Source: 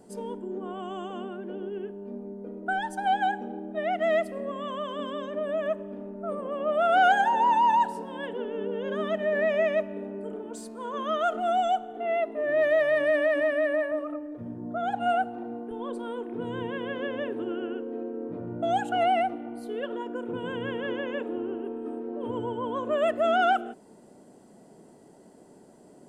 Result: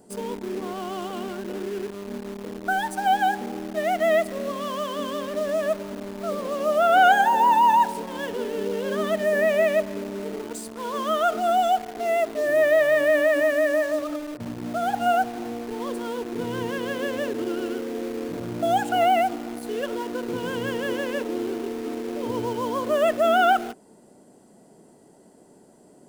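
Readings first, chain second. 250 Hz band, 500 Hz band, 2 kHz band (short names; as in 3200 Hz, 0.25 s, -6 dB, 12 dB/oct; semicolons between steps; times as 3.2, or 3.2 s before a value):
+4.0 dB, +4.0 dB, +4.5 dB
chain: high shelf 7500 Hz +7 dB; in parallel at -4.5 dB: bit-crush 6-bit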